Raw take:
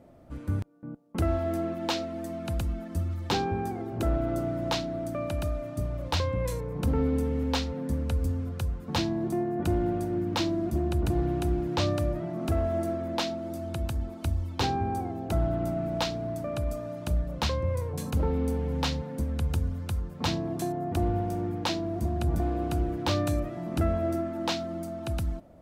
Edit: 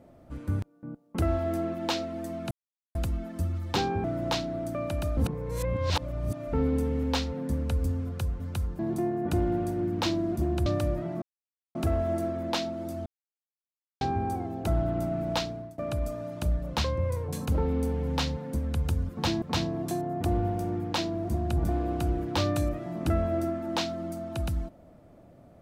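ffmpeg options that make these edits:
-filter_complex "[0:a]asplit=14[s0][s1][s2][s3][s4][s5][s6][s7][s8][s9][s10][s11][s12][s13];[s0]atrim=end=2.51,asetpts=PTS-STARTPTS,afade=t=out:st=2.506:d=0.004:c=hsin,apad=pad_dur=0.44[s14];[s1]atrim=start=2.51:end=3.602,asetpts=PTS-STARTPTS,afade=t=in:d=0.004:c=hsin[s15];[s2]atrim=start=4.438:end=5.572[s16];[s3]atrim=start=5.568:end=6.932,asetpts=PTS-STARTPTS,areverse[s17];[s4]atrim=start=6.928:end=8.802[s18];[s5]atrim=start=19.738:end=20.132[s19];[s6]atrim=start=9.128:end=11.002[s20];[s7]atrim=start=11.838:end=12.4,asetpts=PTS-STARTPTS,afade=t=out:st=0.558:d=0.004:c=hsin,apad=pad_dur=0.53[s21];[s8]atrim=start=12.4:end=13.71,asetpts=PTS-STARTPTS,afade=t=in:d=0.004:c=hsin,afade=t=out:st=1.306:d=0.004:c=hsin[s22];[s9]atrim=start=13.71:end=14.66,asetpts=PTS-STARTPTS,volume=0[s23];[s10]atrim=start=14.66:end=16.43,asetpts=PTS-STARTPTS,afade=t=in:d=0.004:c=hsin,afade=t=out:st=1.38:d=0.39:silence=0.0891251[s24];[s11]atrim=start=16.43:end=19.742,asetpts=PTS-STARTPTS,afade=t=in:d=0.004:c=hsin:silence=0.0891251[s25];[s12]atrim=start=8.798:end=9.132[s26];[s13]atrim=start=20.128[s27];[s14][s15]concat=n=2:v=0:a=1[s28];[s28][s16]acrossfade=d=0.004:c1=hsin:c2=hsin[s29];[s29][s17]acrossfade=d=0.004:c1=hsin:c2=hsin[s30];[s30][s18]acrossfade=d=0.004:c1=hsin:c2=hsin[s31];[s31][s19]acrossfade=d=0.004:c1=hsin:c2=hsin[s32];[s32][s20]acrossfade=d=0.004:c1=hsin:c2=hsin[s33];[s21][s22][s23][s24][s25]concat=n=5:v=0:a=1[s34];[s33][s34]acrossfade=d=0.004:c1=hsin:c2=hsin[s35];[s35][s26]acrossfade=d=0.004:c1=hsin:c2=hsin[s36];[s36][s27]acrossfade=d=0.004:c1=hsin:c2=hsin"

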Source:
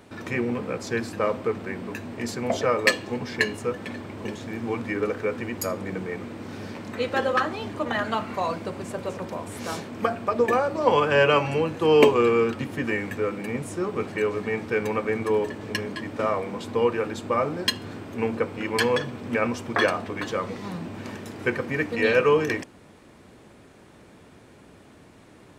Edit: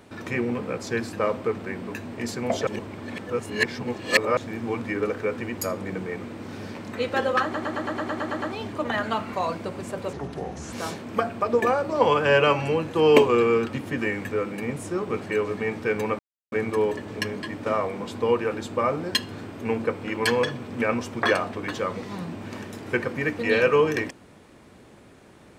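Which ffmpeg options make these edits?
-filter_complex "[0:a]asplit=15[s0][s1][s2][s3][s4][s5][s6][s7][s8][s9][s10][s11][s12][s13][s14];[s0]atrim=end=2.672[s15];[s1]atrim=start=2.668:end=4.372,asetpts=PTS-STARTPTS,areverse[s16];[s2]atrim=start=4.368:end=7.542[s17];[s3]atrim=start=7.428:end=7.542[s18];[s4]atrim=start=7.428:end=7.542[s19];[s5]atrim=start=7.428:end=7.542[s20];[s6]atrim=start=7.428:end=7.542[s21];[s7]atrim=start=7.428:end=7.542[s22];[s8]atrim=start=7.428:end=7.542[s23];[s9]atrim=start=7.428:end=7.542[s24];[s10]atrim=start=7.428:end=7.542[s25];[s11]atrim=start=7.428:end=9.144[s26];[s12]atrim=start=9.14:end=9.59,asetpts=PTS-STARTPTS,asetrate=33075,aresample=44100[s27];[s13]atrim=start=9.586:end=15.05,asetpts=PTS-STARTPTS,afade=t=out:st=5.46:d=0.004:c=hsin,apad=pad_dur=0.33[s28];[s14]atrim=start=15.05,asetpts=PTS-STARTPTS,afade=t=in:d=0.004:c=hsin[s29];[s15][s16]acrossfade=d=0.004:c1=hsin:c2=hsin[s30];[s30][s17]acrossfade=d=0.004:c1=hsin:c2=hsin[s31];[s31][s18]acrossfade=d=0.004:c1=hsin:c2=hsin[s32];[s32][s19]acrossfade=d=0.004:c1=hsin:c2=hsin[s33];[s33][s20]acrossfade=d=0.004:c1=hsin:c2=hsin[s34];[s34][s21]acrossfade=d=0.004:c1=hsin:c2=hsin[s35];[s35][s22]acrossfade=d=0.004:c1=hsin:c2=hsin[s36];[s36][s23]acrossfade=d=0.004:c1=hsin:c2=hsin[s37];[s37][s24]acrossfade=d=0.004:c1=hsin:c2=hsin[s38];[s38][s25]acrossfade=d=0.004:c1=hsin:c2=hsin[s39];[s39][s26]acrossfade=d=0.004:c1=hsin:c2=hsin[s40];[s40][s27]acrossfade=d=0.004:c1=hsin:c2=hsin[s41];[s28][s29]concat=n=2:v=0:a=1[s42];[s41][s42]acrossfade=d=0.004:c1=hsin:c2=hsin"

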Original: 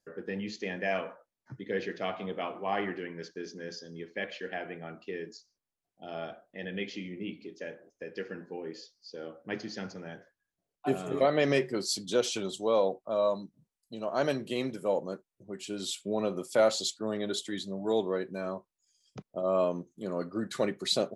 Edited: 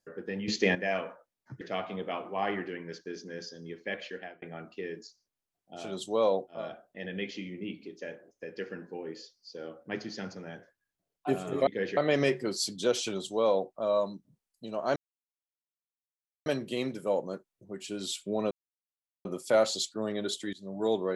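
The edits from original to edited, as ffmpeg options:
-filter_complex "[0:a]asplit=12[s0][s1][s2][s3][s4][s5][s6][s7][s8][s9][s10][s11];[s0]atrim=end=0.482[s12];[s1]atrim=start=0.478:end=0.752,asetpts=PTS-STARTPTS,volume=3.35[s13];[s2]atrim=start=0.748:end=1.612[s14];[s3]atrim=start=1.908:end=4.72,asetpts=PTS-STARTPTS,afade=t=out:st=2.472:d=0.34[s15];[s4]atrim=start=4.72:end=6.3,asetpts=PTS-STARTPTS,afade=t=in:d=0.004:c=hsin[s16];[s5]atrim=start=12.28:end=13.23[s17];[s6]atrim=start=6.06:end=11.262[s18];[s7]atrim=start=1.608:end=1.912[s19];[s8]atrim=start=11.258:end=14.25,asetpts=PTS-STARTPTS,afade=t=out:st=2.988:d=0.004:c=hsin,apad=pad_dur=1.5[s20];[s9]atrim=start=14.25:end=16.3,asetpts=PTS-STARTPTS,afade=t=in:d=0.004:c=hsin,afade=t=out:st=2.046:d=0.004:c=hsin,apad=pad_dur=0.74[s21];[s10]atrim=start=16.3:end=17.58,asetpts=PTS-STARTPTS,afade=t=in:d=0.004:c=hsin,afade=t=out:st=1.276:d=0.004:c=hsin:silence=0.0891251[s22];[s11]atrim=start=17.58,asetpts=PTS-STARTPTS,afade=t=in:d=0.25:silence=0.0891251[s23];[s12][s13]acrossfade=d=0.004:c1=hsin:c2=hsin[s24];[s24][s14]acrossfade=d=0.004:c1=hsin:c2=hsin[s25];[s15][s16]concat=n=2:v=0:a=1[s26];[s25][s26]acrossfade=d=0.004:c1=hsin:c2=hsin[s27];[s27][s17]acrossfade=d=0.24:c1=tri:c2=tri[s28];[s28][s18]acrossfade=d=0.24:c1=tri:c2=tri[s29];[s29][s19]acrossfade=d=0.004:c1=hsin:c2=hsin[s30];[s20][s21][s22][s23]concat=n=4:v=0:a=1[s31];[s30][s31]acrossfade=d=0.004:c1=hsin:c2=hsin"

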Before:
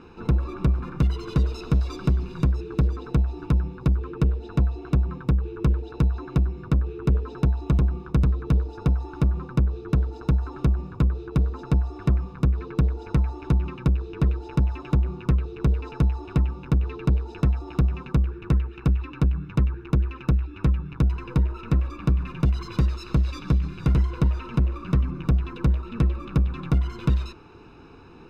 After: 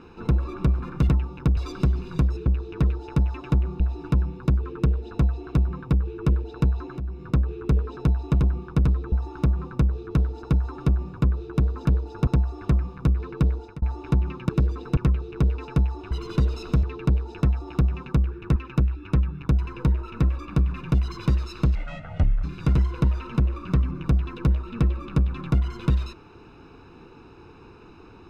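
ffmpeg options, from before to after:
-filter_complex "[0:a]asplit=17[s0][s1][s2][s3][s4][s5][s6][s7][s8][s9][s10][s11][s12][s13][s14][s15][s16];[s0]atrim=end=1.092[s17];[s1]atrim=start=16.348:end=16.832[s18];[s2]atrim=start=1.808:end=2.702[s19];[s3]atrim=start=13.868:end=15.212[s20];[s4]atrim=start=3.178:end=6.36,asetpts=PTS-STARTPTS,afade=t=out:st=3.178:d=0.004:c=hsin:silence=0.211349[s21];[s5]atrim=start=6.36:end=8.502,asetpts=PTS-STARTPTS,afade=t=in:d=0.31:silence=0.211349[s22];[s6]atrim=start=8.898:end=11.652[s23];[s7]atrim=start=8.498:end=8.902[s24];[s8]atrim=start=11.648:end=13.2,asetpts=PTS-STARTPTS,afade=t=out:st=1.292:d=0.26[s25];[s9]atrim=start=13.2:end=13.872,asetpts=PTS-STARTPTS,afade=t=in:d=0.004:c=hsin[s26];[s10]atrim=start=2.698:end=3.182[s27];[s11]atrim=start=15.208:end=16.352[s28];[s12]atrim=start=1.088:end=1.812[s29];[s13]atrim=start=16.828:end=18.562[s30];[s14]atrim=start=20.068:end=23.264[s31];[s15]atrim=start=23.26:end=23.63,asetpts=PTS-STARTPTS,asetrate=23814,aresample=44100[s32];[s16]atrim=start=23.626[s33];[s17][s18]acrossfade=d=0.004:c1=hsin:c2=hsin[s34];[s34][s19]acrossfade=d=0.004:c1=hsin:c2=hsin[s35];[s35][s20]acrossfade=d=0.004:c1=hsin:c2=hsin[s36];[s21][s22]concat=n=2:v=0:a=1[s37];[s36][s37]acrossfade=d=0.004:c1=hsin:c2=hsin[s38];[s38][s23]acrossfade=d=0.004:c1=hsin:c2=hsin[s39];[s39][s24]acrossfade=d=0.004:c1=hsin:c2=hsin[s40];[s25][s26]concat=n=2:v=0:a=1[s41];[s40][s41]acrossfade=d=0.004:c1=hsin:c2=hsin[s42];[s42][s27]acrossfade=d=0.004:c1=hsin:c2=hsin[s43];[s43][s28]acrossfade=d=0.004:c1=hsin:c2=hsin[s44];[s44][s29]acrossfade=d=0.004:c1=hsin:c2=hsin[s45];[s45][s30]acrossfade=d=0.004:c1=hsin:c2=hsin[s46];[s46][s31]acrossfade=d=0.004:c1=hsin:c2=hsin[s47];[s47][s32]acrossfade=d=0.004:c1=hsin:c2=hsin[s48];[s48][s33]acrossfade=d=0.004:c1=hsin:c2=hsin"

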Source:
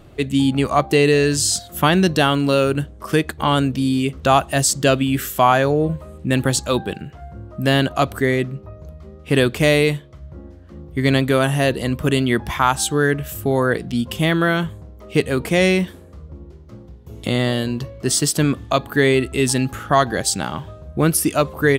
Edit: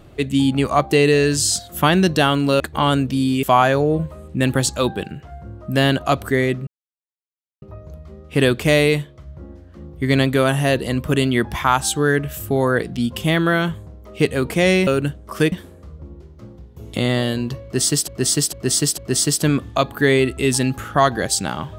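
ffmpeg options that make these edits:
-filter_complex "[0:a]asplit=9[s0][s1][s2][s3][s4][s5][s6][s7][s8];[s0]atrim=end=2.602[s9];[s1]atrim=start=3.248:end=4.082[s10];[s2]atrim=start=5.328:end=8.57,asetpts=PTS-STARTPTS,afade=t=out:st=3.238:d=0.004:c=hsin,apad=pad_dur=0.95[s11];[s3]atrim=start=8.57:end=15.822,asetpts=PTS-STARTPTS,afade=t=in:d=0.004:c=hsin[s12];[s4]atrim=start=2.598:end=3.252[s13];[s5]atrim=start=15.818:end=18.382[s14];[s6]atrim=start=17.928:end=18.382[s15];[s7]atrim=start=17.928:end=18.382[s16];[s8]atrim=start=17.928[s17];[s9][s10]acrossfade=d=0.004:c1=hsin:c2=hsin[s18];[s11][s12]concat=n=2:v=0:a=1[s19];[s18][s19]acrossfade=d=0.004:c1=hsin:c2=hsin[s20];[s20][s13]acrossfade=d=0.004:c1=hsin:c2=hsin[s21];[s21][s14]acrossfade=d=0.004:c1=hsin:c2=hsin[s22];[s22][s15]acrossfade=d=0.004:c1=hsin:c2=hsin[s23];[s23][s16]acrossfade=d=0.004:c1=hsin:c2=hsin[s24];[s24][s17]acrossfade=d=0.004:c1=hsin:c2=hsin"

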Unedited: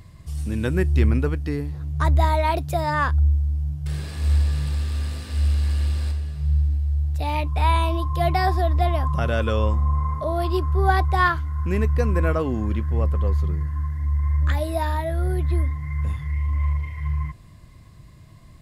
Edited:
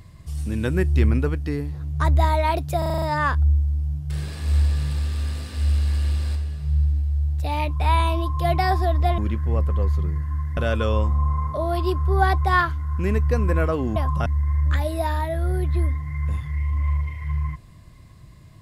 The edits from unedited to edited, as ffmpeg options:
-filter_complex "[0:a]asplit=11[s0][s1][s2][s3][s4][s5][s6][s7][s8][s9][s10];[s0]atrim=end=2.822[s11];[s1]atrim=start=2.778:end=2.822[s12];[s2]atrim=start=2.778:end=2.822[s13];[s3]atrim=start=2.778:end=2.822[s14];[s4]atrim=start=2.778:end=2.822[s15];[s5]atrim=start=2.778:end=2.822[s16];[s6]atrim=start=2.778:end=8.942[s17];[s7]atrim=start=12.628:end=14.022[s18];[s8]atrim=start=9.238:end=12.632[s19];[s9]atrim=start=8.938:end=9.242[s20];[s10]atrim=start=14.018[s21];[s11][s12]acrossfade=d=0.004:c1=hsin:c2=hsin[s22];[s22][s13]acrossfade=d=0.004:c1=hsin:c2=hsin[s23];[s23][s14]acrossfade=d=0.004:c1=hsin:c2=hsin[s24];[s24][s15]acrossfade=d=0.004:c1=hsin:c2=hsin[s25];[s25][s16]acrossfade=d=0.004:c1=hsin:c2=hsin[s26];[s26][s17]acrossfade=d=0.004:c1=hsin:c2=hsin[s27];[s27][s18]acrossfade=d=0.004:c1=hsin:c2=hsin[s28];[s28][s19]acrossfade=d=0.004:c1=hsin:c2=hsin[s29];[s29][s20]acrossfade=d=0.004:c1=hsin:c2=hsin[s30];[s30][s21]acrossfade=d=0.004:c1=hsin:c2=hsin"

